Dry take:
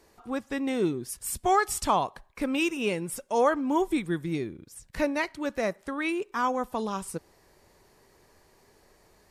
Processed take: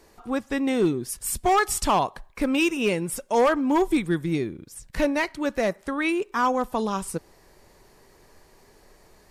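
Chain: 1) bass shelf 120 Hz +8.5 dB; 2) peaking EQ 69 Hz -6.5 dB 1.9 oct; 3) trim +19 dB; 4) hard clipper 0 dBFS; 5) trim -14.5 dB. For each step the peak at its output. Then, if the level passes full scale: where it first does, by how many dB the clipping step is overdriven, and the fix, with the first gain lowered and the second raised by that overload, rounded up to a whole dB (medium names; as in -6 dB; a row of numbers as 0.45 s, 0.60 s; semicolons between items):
-10.0 dBFS, -10.5 dBFS, +8.5 dBFS, 0.0 dBFS, -14.5 dBFS; step 3, 8.5 dB; step 3 +10 dB, step 5 -5.5 dB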